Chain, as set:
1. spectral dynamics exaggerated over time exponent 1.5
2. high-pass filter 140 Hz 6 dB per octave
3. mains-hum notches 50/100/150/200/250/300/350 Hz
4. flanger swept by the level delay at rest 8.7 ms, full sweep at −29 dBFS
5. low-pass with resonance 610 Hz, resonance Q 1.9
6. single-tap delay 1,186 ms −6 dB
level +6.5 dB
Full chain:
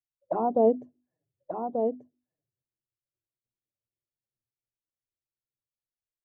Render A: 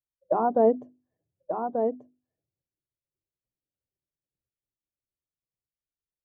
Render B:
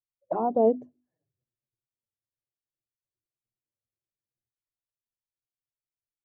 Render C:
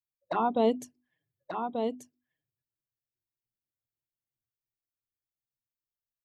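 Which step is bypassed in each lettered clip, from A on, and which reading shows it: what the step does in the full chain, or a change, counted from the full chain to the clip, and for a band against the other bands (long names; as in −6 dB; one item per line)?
4, change in momentary loudness spread −2 LU
6, change in momentary loudness spread −3 LU
5, change in integrated loudness −3.0 LU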